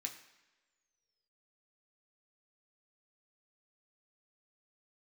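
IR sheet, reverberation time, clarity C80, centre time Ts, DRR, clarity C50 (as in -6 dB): no single decay rate, 12.0 dB, 17 ms, 1.5 dB, 10.0 dB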